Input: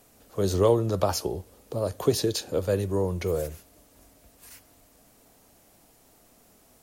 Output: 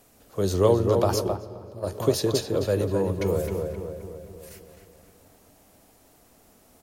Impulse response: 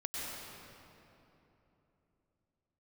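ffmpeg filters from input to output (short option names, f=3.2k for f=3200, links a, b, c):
-filter_complex "[0:a]asplit=2[a][b];[b]adelay=262,lowpass=f=2.2k:p=1,volume=-4dB,asplit=2[c][d];[d]adelay=262,lowpass=f=2.2k:p=1,volume=0.54,asplit=2[e][f];[f]adelay=262,lowpass=f=2.2k:p=1,volume=0.54,asplit=2[g][h];[h]adelay=262,lowpass=f=2.2k:p=1,volume=0.54,asplit=2[i][j];[j]adelay=262,lowpass=f=2.2k:p=1,volume=0.54,asplit=2[k][l];[l]adelay=262,lowpass=f=2.2k:p=1,volume=0.54,asplit=2[m][n];[n]adelay=262,lowpass=f=2.2k:p=1,volume=0.54[o];[a][c][e][g][i][k][m][o]amix=inputs=8:normalize=0,asplit=3[p][q][r];[p]afade=t=out:st=1.15:d=0.02[s];[q]agate=range=-14dB:threshold=-24dB:ratio=16:detection=peak,afade=t=in:st=1.15:d=0.02,afade=t=out:st=1.86:d=0.02[t];[r]afade=t=in:st=1.86:d=0.02[u];[s][t][u]amix=inputs=3:normalize=0,asplit=2[v][w];[1:a]atrim=start_sample=2205,lowpass=4k[x];[w][x]afir=irnorm=-1:irlink=0,volume=-19.5dB[y];[v][y]amix=inputs=2:normalize=0"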